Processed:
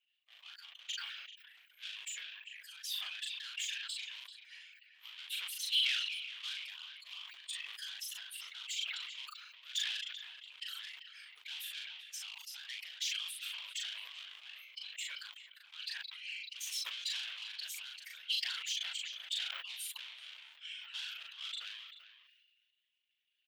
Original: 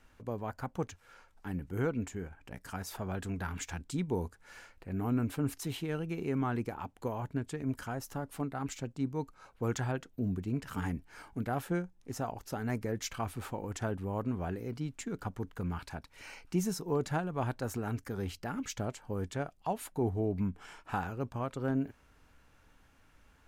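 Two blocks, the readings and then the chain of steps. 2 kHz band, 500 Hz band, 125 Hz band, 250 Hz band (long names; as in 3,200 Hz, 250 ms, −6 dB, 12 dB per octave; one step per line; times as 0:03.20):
+2.0 dB, below −35 dB, below −40 dB, below −40 dB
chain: spectral dynamics exaggerated over time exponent 2
transient designer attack −8 dB, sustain +5 dB
random phases in short frames
frequency shifter +71 Hz
mid-hump overdrive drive 27 dB, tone 3,800 Hz, clips at −23.5 dBFS
in parallel at −6 dB: hard clipping −38 dBFS, distortion −8 dB
on the sum: four-pole ladder high-pass 2,900 Hz, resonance 65%
double-tracking delay 39 ms −6 dB
far-end echo of a speakerphone 390 ms, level −11 dB
level that may fall only so fast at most 34 dB per second
level +3 dB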